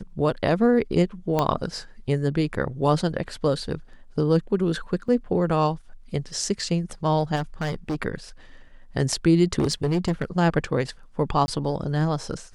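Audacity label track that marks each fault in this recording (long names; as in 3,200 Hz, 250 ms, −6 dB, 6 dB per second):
1.390000	1.390000	click −9 dBFS
5.080000	5.080000	drop-out 4 ms
7.350000	7.960000	clipping −23 dBFS
9.580000	10.250000	clipping −18 dBFS
11.460000	11.480000	drop-out 20 ms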